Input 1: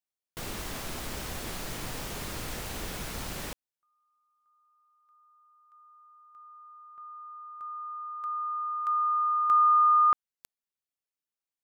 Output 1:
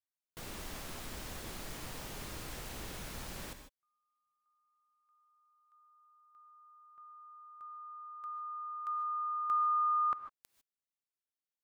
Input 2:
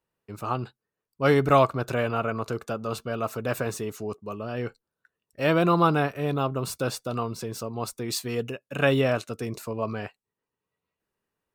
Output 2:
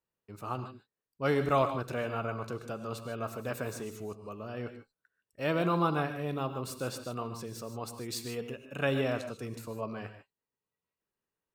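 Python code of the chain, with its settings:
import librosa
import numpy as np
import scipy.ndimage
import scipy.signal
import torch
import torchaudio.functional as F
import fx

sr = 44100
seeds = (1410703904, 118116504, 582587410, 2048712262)

y = fx.rev_gated(x, sr, seeds[0], gate_ms=170, shape='rising', drr_db=8.5)
y = y * librosa.db_to_amplitude(-8.0)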